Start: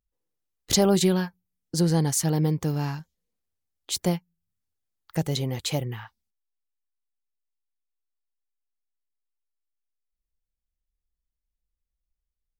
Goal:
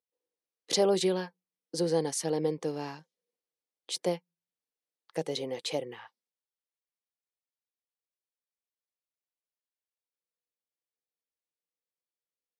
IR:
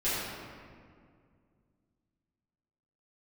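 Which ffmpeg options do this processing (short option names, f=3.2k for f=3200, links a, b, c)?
-af "highpass=f=210:w=0.5412,highpass=f=210:w=1.3066,equalizer=f=220:t=q:w=4:g=-8,equalizer=f=490:t=q:w=4:g=9,equalizer=f=1.4k:t=q:w=4:g=-5,equalizer=f=7.1k:t=q:w=4:g=-7,lowpass=f=9.9k:w=0.5412,lowpass=f=9.9k:w=1.3066,volume=-4.5dB"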